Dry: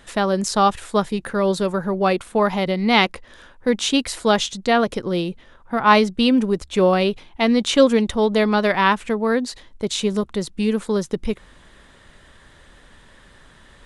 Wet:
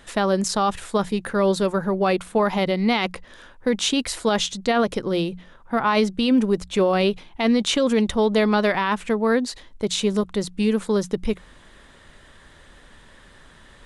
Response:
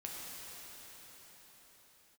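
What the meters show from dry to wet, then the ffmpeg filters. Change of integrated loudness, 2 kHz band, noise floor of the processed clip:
-2.0 dB, -3.5 dB, -50 dBFS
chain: -af "bandreject=f=60:t=h:w=6,bandreject=f=120:t=h:w=6,bandreject=f=180:t=h:w=6,alimiter=limit=0.282:level=0:latency=1:release=18"

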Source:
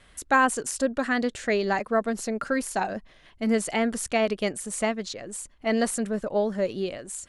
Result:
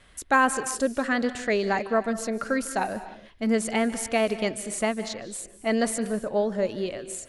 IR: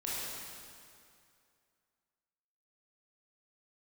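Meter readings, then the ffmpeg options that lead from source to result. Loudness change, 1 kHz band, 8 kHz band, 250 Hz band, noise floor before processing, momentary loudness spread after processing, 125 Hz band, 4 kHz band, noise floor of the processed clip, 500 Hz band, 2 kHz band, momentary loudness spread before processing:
0.0 dB, 0.0 dB, 0.0 dB, 0.0 dB, -56 dBFS, 8 LU, 0.0 dB, 0.0 dB, -52 dBFS, 0.0 dB, 0.0 dB, 8 LU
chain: -filter_complex "[0:a]asplit=2[s0][s1];[s1]equalizer=f=7600:t=o:w=0.57:g=-6[s2];[1:a]atrim=start_sample=2205,afade=t=out:st=0.22:d=0.01,atrim=end_sample=10143,adelay=149[s3];[s2][s3]afir=irnorm=-1:irlink=0,volume=0.188[s4];[s0][s4]amix=inputs=2:normalize=0"

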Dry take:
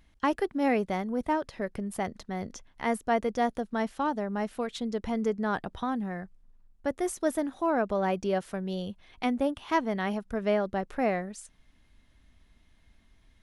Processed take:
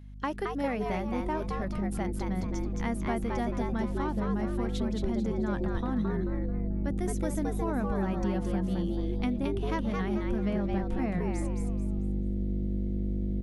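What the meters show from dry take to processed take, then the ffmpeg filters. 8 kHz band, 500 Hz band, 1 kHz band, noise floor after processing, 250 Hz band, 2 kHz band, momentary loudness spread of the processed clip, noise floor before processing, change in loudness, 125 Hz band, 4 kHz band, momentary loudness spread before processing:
-3.0 dB, -4.0 dB, -5.5 dB, -34 dBFS, +1.5 dB, -5.0 dB, 3 LU, -63 dBFS, -1.0 dB, +9.5 dB, -4.0 dB, 8 LU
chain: -filter_complex "[0:a]aeval=exprs='val(0)+0.00708*(sin(2*PI*50*n/s)+sin(2*PI*2*50*n/s)/2+sin(2*PI*3*50*n/s)/3+sin(2*PI*4*50*n/s)/4+sin(2*PI*5*50*n/s)/5)':c=same,asubboost=boost=7.5:cutoff=170,acompressor=threshold=0.0562:ratio=6,asplit=2[s0][s1];[s1]asplit=4[s2][s3][s4][s5];[s2]adelay=219,afreqshift=150,volume=0.631[s6];[s3]adelay=438,afreqshift=300,volume=0.209[s7];[s4]adelay=657,afreqshift=450,volume=0.0684[s8];[s5]adelay=876,afreqshift=600,volume=0.0226[s9];[s6][s7][s8][s9]amix=inputs=4:normalize=0[s10];[s0][s10]amix=inputs=2:normalize=0,volume=0.75"

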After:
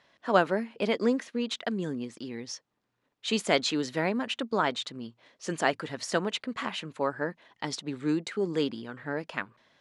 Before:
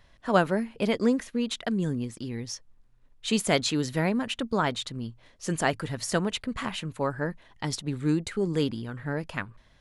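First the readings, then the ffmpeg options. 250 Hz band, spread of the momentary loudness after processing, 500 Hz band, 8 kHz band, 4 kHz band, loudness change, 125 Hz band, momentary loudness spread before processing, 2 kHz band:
-3.5 dB, 13 LU, -0.5 dB, -4.5 dB, -0.5 dB, -1.5 dB, -8.5 dB, 11 LU, 0.0 dB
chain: -af "highpass=250,lowpass=6300"

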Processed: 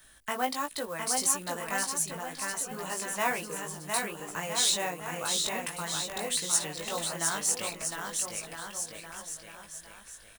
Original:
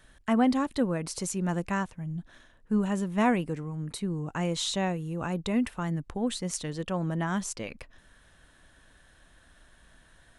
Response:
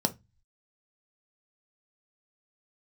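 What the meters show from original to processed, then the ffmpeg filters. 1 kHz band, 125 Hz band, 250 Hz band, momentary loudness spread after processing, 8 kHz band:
+0.5 dB, -13.5 dB, -14.0 dB, 13 LU, +11.0 dB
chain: -filter_complex "[0:a]flanger=delay=17:depth=3:speed=1.4,lowshelf=f=430:g=-7,acrossover=split=420|2800[s0][s1][s2];[s0]acompressor=threshold=0.00316:ratio=6[s3];[s3][s1][s2]amix=inputs=3:normalize=0,aecho=1:1:710|1314|1826|2263|2633:0.631|0.398|0.251|0.158|0.1,asplit=2[s4][s5];[s5]acrusher=bits=3:mode=log:mix=0:aa=0.000001,volume=0.473[s6];[s4][s6]amix=inputs=2:normalize=0,aemphasis=mode=production:type=50fm"

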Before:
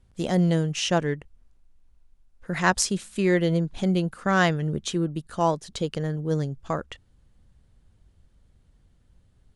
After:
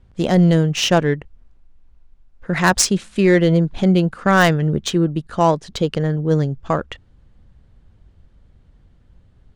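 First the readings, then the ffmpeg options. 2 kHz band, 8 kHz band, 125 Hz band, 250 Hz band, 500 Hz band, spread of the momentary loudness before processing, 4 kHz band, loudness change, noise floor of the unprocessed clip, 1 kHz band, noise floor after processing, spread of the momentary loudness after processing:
+7.0 dB, +7.5 dB, +8.0 dB, +8.0 dB, +8.0 dB, 9 LU, +8.0 dB, +8.0 dB, -62 dBFS, +7.0 dB, -54 dBFS, 9 LU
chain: -af "crystalizer=i=1:c=0,adynamicsmooth=sensitivity=1.5:basefreq=3500,apsyclip=5.31,volume=0.501"

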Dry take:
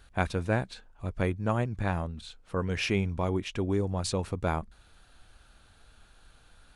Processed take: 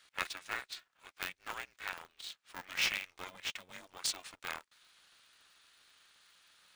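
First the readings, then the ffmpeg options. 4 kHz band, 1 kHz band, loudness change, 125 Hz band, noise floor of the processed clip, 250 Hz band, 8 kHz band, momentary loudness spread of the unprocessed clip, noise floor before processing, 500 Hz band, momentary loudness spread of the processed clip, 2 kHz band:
+1.0 dB, -10.5 dB, -8.5 dB, -34.0 dB, -79 dBFS, -27.5 dB, +0.5 dB, 10 LU, -59 dBFS, -22.5 dB, 15 LU, -2.0 dB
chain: -af "asuperpass=centerf=4200:order=4:qfactor=0.58,aeval=exprs='val(0)*sgn(sin(2*PI*180*n/s))':c=same,volume=1.12"

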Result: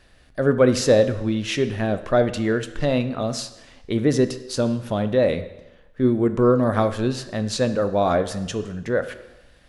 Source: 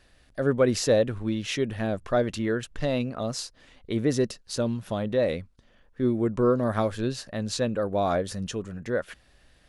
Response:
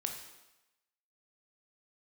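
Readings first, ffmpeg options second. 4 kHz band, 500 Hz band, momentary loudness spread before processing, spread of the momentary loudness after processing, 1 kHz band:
+4.0 dB, +5.5 dB, 9 LU, 10 LU, +5.5 dB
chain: -filter_complex "[0:a]asplit=2[s0][s1];[1:a]atrim=start_sample=2205,highshelf=f=6300:g=-9.5[s2];[s1][s2]afir=irnorm=-1:irlink=0,volume=0.891[s3];[s0][s3]amix=inputs=2:normalize=0"

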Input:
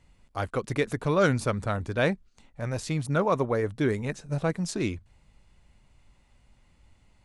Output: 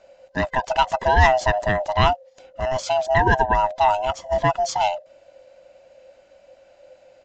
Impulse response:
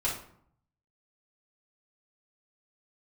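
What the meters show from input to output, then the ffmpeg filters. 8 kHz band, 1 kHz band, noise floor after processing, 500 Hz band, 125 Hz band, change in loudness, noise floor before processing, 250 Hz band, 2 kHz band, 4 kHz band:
+4.5 dB, +15.0 dB, -56 dBFS, +6.0 dB, +2.0 dB, +7.5 dB, -64 dBFS, -3.5 dB, +9.5 dB, +10.5 dB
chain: -af "afftfilt=real='real(if(lt(b,1008),b+24*(1-2*mod(floor(b/24),2)),b),0)':imag='imag(if(lt(b,1008),b+24*(1-2*mod(floor(b/24),2)),b),0)':win_size=2048:overlap=0.75,aresample=16000,aresample=44100,volume=2.37"

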